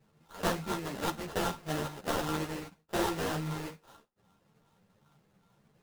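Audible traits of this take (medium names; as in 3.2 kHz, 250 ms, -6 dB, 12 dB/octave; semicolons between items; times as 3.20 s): a buzz of ramps at a fixed pitch in blocks of 32 samples; phasing stages 6, 2.5 Hz, lowest notch 750–1800 Hz; aliases and images of a low sample rate 2.3 kHz, jitter 20%; a shimmering, thickened sound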